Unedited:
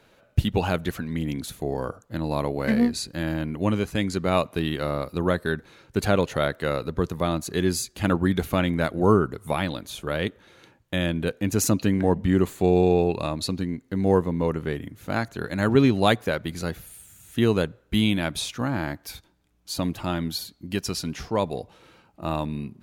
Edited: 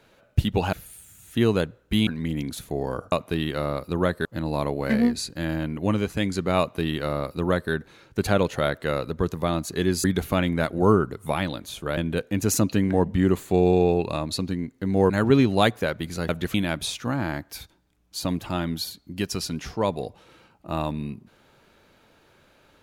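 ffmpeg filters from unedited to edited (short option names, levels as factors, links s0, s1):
-filter_complex "[0:a]asplit=10[s0][s1][s2][s3][s4][s5][s6][s7][s8][s9];[s0]atrim=end=0.732[s10];[s1]atrim=start=16.738:end=18.082[s11];[s2]atrim=start=0.978:end=2.032[s12];[s3]atrim=start=4.368:end=5.502[s13];[s4]atrim=start=2.028:end=7.822[s14];[s5]atrim=start=8.248:end=10.182[s15];[s6]atrim=start=11.068:end=14.202[s16];[s7]atrim=start=15.548:end=16.742[s17];[s8]atrim=start=0.728:end=0.982[s18];[s9]atrim=start=18.078[s19];[s10][s11]acrossfade=d=0.004:c1=hsin:c2=hsin[s20];[s20][s12]acrossfade=d=0.004:c1=hsin:c2=hsin[s21];[s21][s13]acrossfade=d=0.004:c1=hsin:c2=hsin[s22];[s22][s14]acrossfade=d=0.004:c1=hsin:c2=hsin[s23];[s23][s15]acrossfade=d=0.004:c1=hsin:c2=hsin[s24];[s24][s16]acrossfade=d=0.004:c1=hsin:c2=hsin[s25];[s25][s17]acrossfade=d=0.004:c1=hsin:c2=hsin[s26];[s26][s18]acrossfade=d=0.004:c1=hsin:c2=hsin[s27];[s27][s19]acrossfade=d=0.004:c1=hsin:c2=hsin"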